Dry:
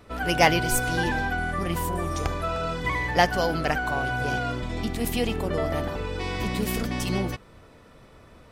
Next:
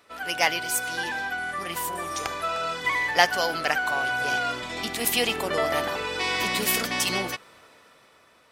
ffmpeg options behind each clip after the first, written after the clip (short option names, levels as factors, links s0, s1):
-af "highpass=f=1300:p=1,dynaudnorm=f=250:g=11:m=3.16"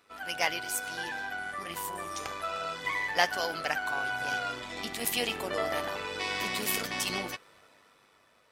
-af "tremolo=f=99:d=0.462,flanger=delay=0.8:depth=9.3:regen=-75:speed=0.25:shape=sinusoidal"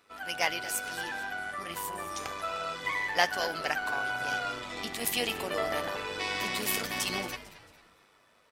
-filter_complex "[0:a]asplit=4[s0][s1][s2][s3];[s1]adelay=224,afreqshift=-140,volume=0.158[s4];[s2]adelay=448,afreqshift=-280,volume=0.0617[s5];[s3]adelay=672,afreqshift=-420,volume=0.024[s6];[s0][s4][s5][s6]amix=inputs=4:normalize=0"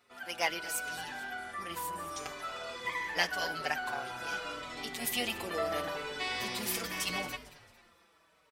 -filter_complex "[0:a]asplit=2[s0][s1];[s1]adelay=5.1,afreqshift=-0.79[s2];[s0][s2]amix=inputs=2:normalize=1"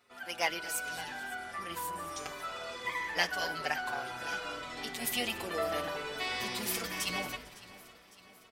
-af "aecho=1:1:556|1112|1668|2224|2780:0.112|0.0651|0.0377|0.0219|0.0127"